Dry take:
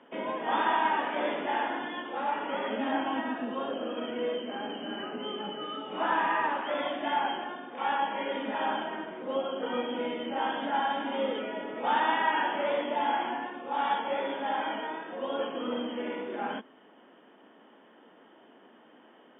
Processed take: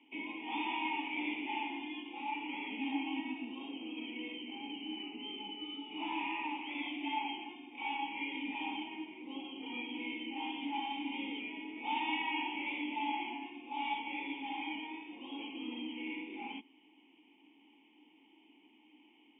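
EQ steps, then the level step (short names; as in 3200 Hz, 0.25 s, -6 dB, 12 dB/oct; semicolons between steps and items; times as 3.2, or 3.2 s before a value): vowel filter u; resonant high shelf 1900 Hz +10.5 dB, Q 3; +1.0 dB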